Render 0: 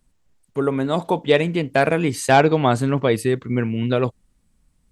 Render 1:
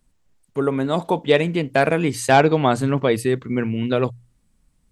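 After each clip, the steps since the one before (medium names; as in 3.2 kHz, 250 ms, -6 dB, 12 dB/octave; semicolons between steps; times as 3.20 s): hum notches 60/120 Hz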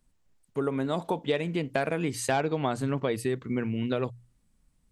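compression 3:1, threshold -20 dBFS, peak gain reduction 9 dB; trim -5 dB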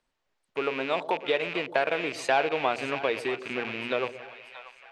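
rattle on loud lows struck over -36 dBFS, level -27 dBFS; three-band isolator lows -20 dB, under 390 Hz, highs -19 dB, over 5.2 kHz; two-band feedback delay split 700 Hz, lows 121 ms, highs 634 ms, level -13.5 dB; trim +4 dB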